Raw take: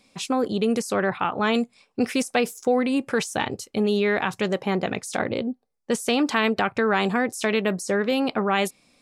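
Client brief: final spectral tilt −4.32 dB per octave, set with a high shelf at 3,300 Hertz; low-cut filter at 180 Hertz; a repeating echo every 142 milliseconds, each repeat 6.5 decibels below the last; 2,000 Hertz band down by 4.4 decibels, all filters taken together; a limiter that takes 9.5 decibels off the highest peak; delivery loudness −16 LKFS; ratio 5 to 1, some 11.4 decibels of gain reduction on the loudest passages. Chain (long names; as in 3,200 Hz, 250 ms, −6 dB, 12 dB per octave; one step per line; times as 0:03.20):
high-pass filter 180 Hz
parametric band 2,000 Hz −4 dB
high-shelf EQ 3,300 Hz −5.5 dB
downward compressor 5 to 1, threshold −31 dBFS
brickwall limiter −25 dBFS
repeating echo 142 ms, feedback 47%, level −6.5 dB
level +19.5 dB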